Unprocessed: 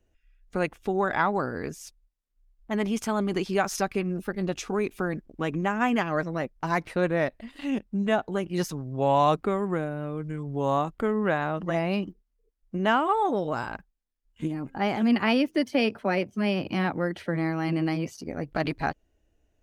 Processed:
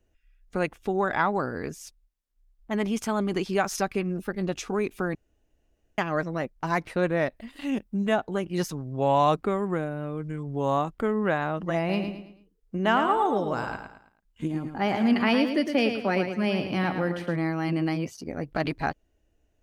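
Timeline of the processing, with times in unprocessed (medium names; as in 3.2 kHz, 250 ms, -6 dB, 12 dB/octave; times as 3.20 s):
5.15–5.98 s: room tone
7.36–8.14 s: treble shelf 11 kHz +9.5 dB
11.78–17.36 s: feedback delay 109 ms, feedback 37%, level -7.5 dB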